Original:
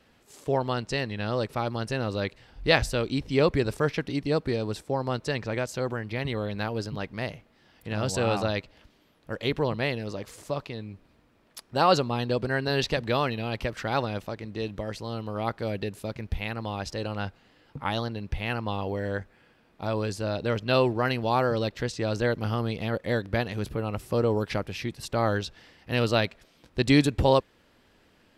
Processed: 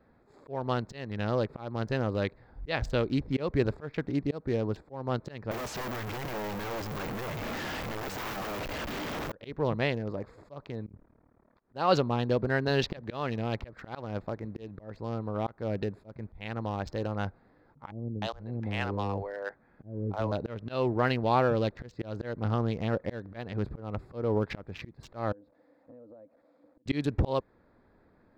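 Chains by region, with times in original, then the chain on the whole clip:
0:05.51–0:09.32: linear delta modulator 64 kbit/s, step −25.5 dBFS + low-shelf EQ 210 Hz −6.5 dB + wrap-around overflow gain 28 dB
0:10.86–0:11.60: low-pass filter 2,300 Hz + compressor whose output falls as the input rises −44 dBFS, ratio −0.5 + amplitude modulation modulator 37 Hz, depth 95%
0:17.91–0:20.32: gap after every zero crossing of 0.055 ms + low-pass filter 6,300 Hz + multiband delay without the direct sound lows, highs 310 ms, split 450 Hz
0:25.32–0:26.86: spike at every zero crossing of −24 dBFS + pair of resonant band-passes 390 Hz, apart 0.82 octaves + downward compressor 12 to 1, threshold −47 dBFS
whole clip: adaptive Wiener filter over 15 samples; parametric band 10,000 Hz −12.5 dB 1.2 octaves; volume swells 249 ms

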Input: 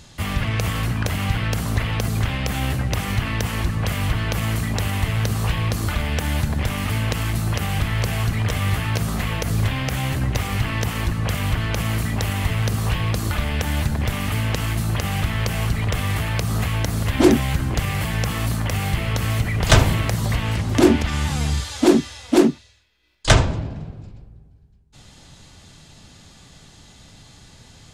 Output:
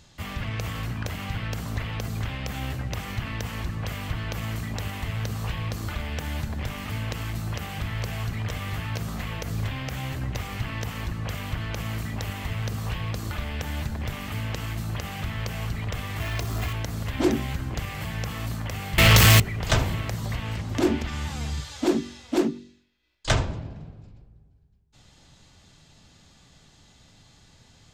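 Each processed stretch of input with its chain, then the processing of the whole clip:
0:16.20–0:16.73: converter with a step at zero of −26.5 dBFS + comb filter 2.9 ms, depth 52%
0:18.98–0:19.40: high-shelf EQ 2,200 Hz +10.5 dB + leveller curve on the samples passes 5
whole clip: parametric band 10,000 Hz −9 dB 0.3 octaves; hum removal 48.05 Hz, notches 10; level −8 dB

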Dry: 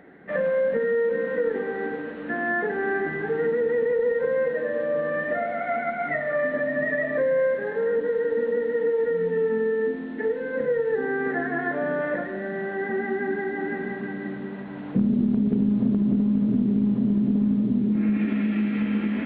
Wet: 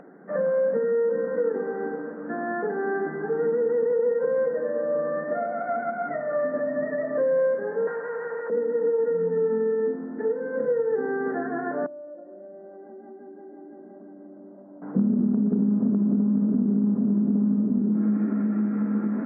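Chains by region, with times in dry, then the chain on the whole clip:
0:07.87–0:08.50: high-pass filter 1,100 Hz + mid-hump overdrive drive 24 dB, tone 2,600 Hz, clips at −20.5 dBFS
0:11.86–0:14.82: pair of resonant band-passes 440 Hz, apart 0.77 octaves + downward compressor 4 to 1, threshold −40 dBFS
whole clip: elliptic band-pass filter 170–1,400 Hz, stop band 40 dB; upward compression, threshold −44 dBFS

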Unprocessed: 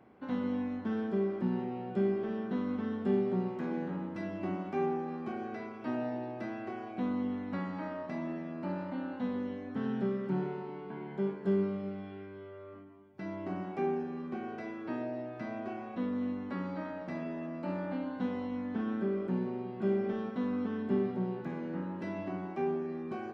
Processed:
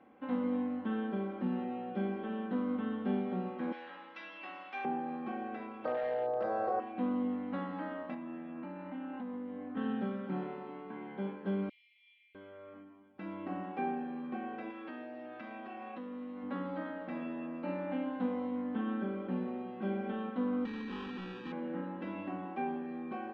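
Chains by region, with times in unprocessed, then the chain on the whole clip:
0:03.72–0:04.85: high-pass filter 950 Hz 6 dB per octave + spectral tilt +4.5 dB per octave
0:05.85–0:06.80: drawn EQ curve 180 Hz 0 dB, 270 Hz −23 dB, 480 Hz +12 dB, 910 Hz −1 dB, 1,300 Hz +1 dB, 2,000 Hz −13 dB, 3,000 Hz −22 dB, 4,400 Hz 0 dB + hard clipping −30 dBFS + envelope flattener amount 100%
0:08.14–0:09.77: low-pass filter 3,300 Hz + notch filter 540 Hz, Q 6.5 + downward compressor 5 to 1, threshold −38 dBFS
0:11.69–0:12.35: Butterworth high-pass 2,100 Hz 96 dB per octave + parametric band 2,800 Hz −3.5 dB 2.9 octaves + highs frequency-modulated by the lows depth 0.59 ms
0:14.70–0:16.43: spectral tilt +2 dB per octave + downward compressor 5 to 1, threshold −40 dBFS
0:20.65–0:21.52: sample-rate reduction 2,100 Hz + hard clipping −36.5 dBFS + Butterworth band-reject 640 Hz, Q 1.9
whole clip: Chebyshev low-pass filter 3,300 Hz, order 3; low-shelf EQ 160 Hz −11.5 dB; comb filter 3.8 ms, depth 58%

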